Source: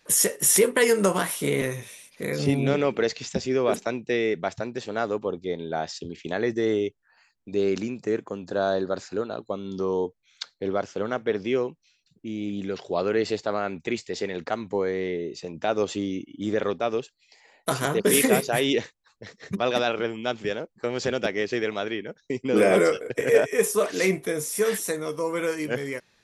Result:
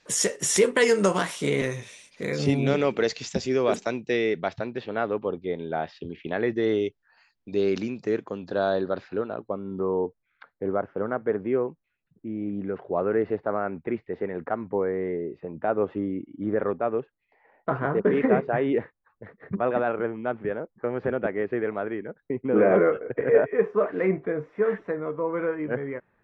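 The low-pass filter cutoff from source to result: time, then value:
low-pass filter 24 dB per octave
0:03.87 7,800 Hz
0:04.97 3,100 Hz
0:06.43 3,100 Hz
0:06.84 5,500 Hz
0:08.20 5,500 Hz
0:09.19 3,000 Hz
0:09.65 1,700 Hz

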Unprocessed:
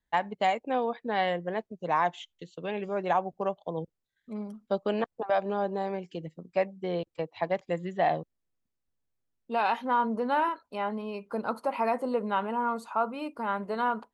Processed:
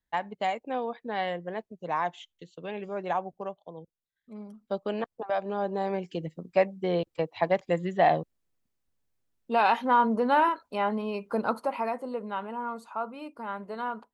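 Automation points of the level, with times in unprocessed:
0:03.25 −3 dB
0:03.83 −11 dB
0:04.74 −2.5 dB
0:05.43 −2.5 dB
0:06.02 +4 dB
0:11.46 +4 dB
0:11.99 −5 dB

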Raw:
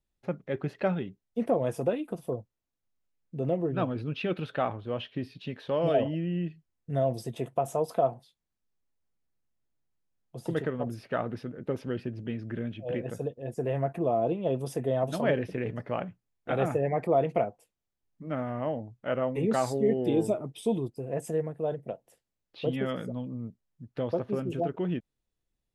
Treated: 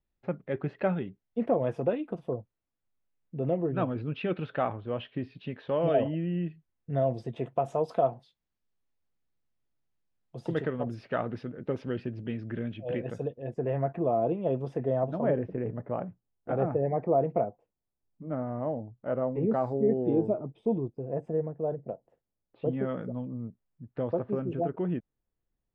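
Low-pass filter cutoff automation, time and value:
0:07.38 2,700 Hz
0:07.97 4,600 Hz
0:13.16 4,600 Hz
0:13.67 2,000 Hz
0:14.76 2,000 Hz
0:15.18 1,000 Hz
0:22.62 1,000 Hz
0:23.12 1,700 Hz

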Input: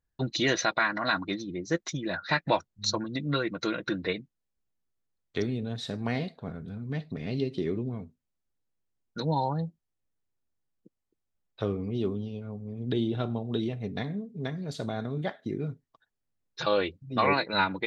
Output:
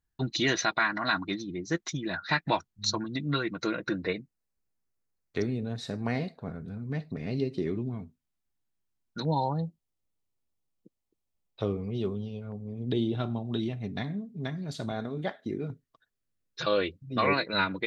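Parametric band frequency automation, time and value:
parametric band −9 dB 0.35 octaves
540 Hz
from 0:03.62 3,300 Hz
from 0:07.67 500 Hz
from 0:09.25 1,600 Hz
from 0:11.77 290 Hz
from 0:12.52 1,500 Hz
from 0:13.16 470 Hz
from 0:14.91 130 Hz
from 0:15.70 840 Hz

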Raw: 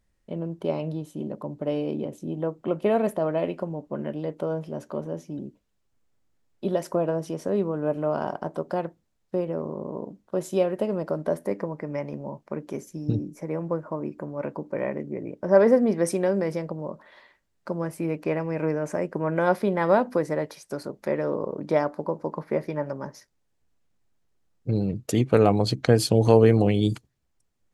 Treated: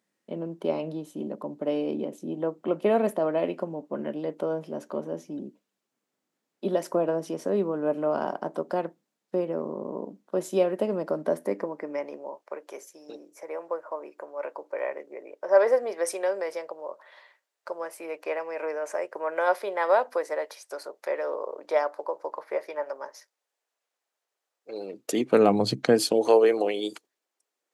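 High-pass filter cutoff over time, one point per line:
high-pass filter 24 dB per octave
0:11.40 200 Hz
0:12.61 490 Hz
0:24.69 490 Hz
0:25.68 130 Hz
0:26.33 370 Hz

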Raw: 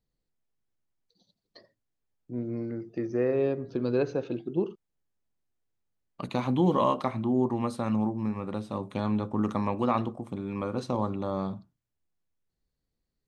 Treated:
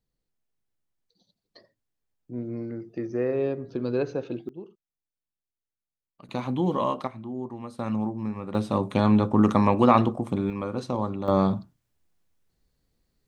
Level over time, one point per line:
0 dB
from 0:04.49 −13 dB
from 0:06.29 −1.5 dB
from 0:07.07 −8.5 dB
from 0:07.79 −0.5 dB
from 0:08.55 +8.5 dB
from 0:10.50 +1 dB
from 0:11.28 +10 dB

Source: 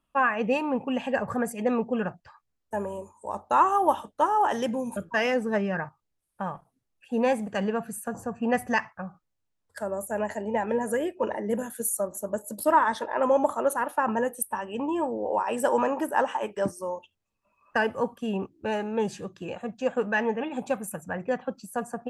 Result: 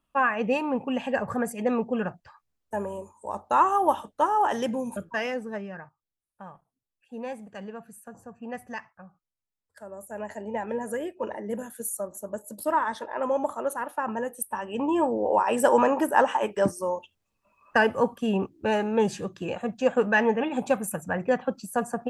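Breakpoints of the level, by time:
0:04.86 0 dB
0:05.84 −11.5 dB
0:09.81 −11.5 dB
0:10.42 −4 dB
0:14.26 −4 dB
0:14.97 +4 dB

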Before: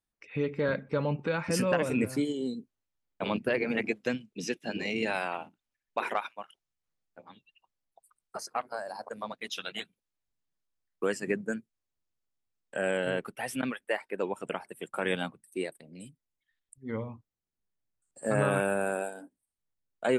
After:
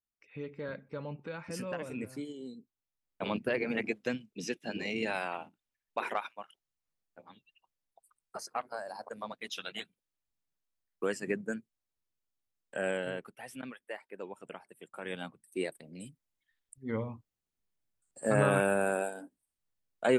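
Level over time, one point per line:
0:02.54 −11 dB
0:03.22 −3 dB
0:12.89 −3 dB
0:13.36 −11 dB
0:15.02 −11 dB
0:15.68 +0.5 dB

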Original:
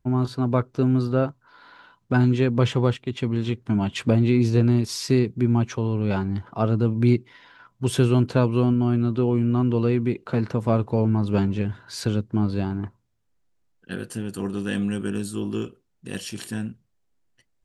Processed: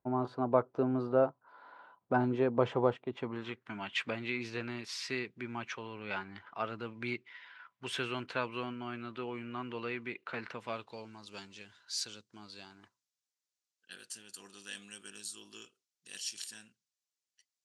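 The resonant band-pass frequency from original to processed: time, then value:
resonant band-pass, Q 1.4
0:03.11 720 Hz
0:03.74 2,100 Hz
0:10.47 2,100 Hz
0:11.20 5,800 Hz

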